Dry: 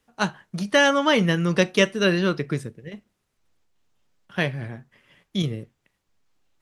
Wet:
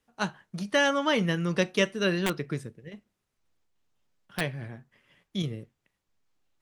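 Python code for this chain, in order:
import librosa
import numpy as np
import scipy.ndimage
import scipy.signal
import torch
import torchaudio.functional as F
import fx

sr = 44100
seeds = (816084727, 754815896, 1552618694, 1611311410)

y = fx.overflow_wrap(x, sr, gain_db=12.5, at=(2.26, 4.41))
y = F.gain(torch.from_numpy(y), -6.0).numpy()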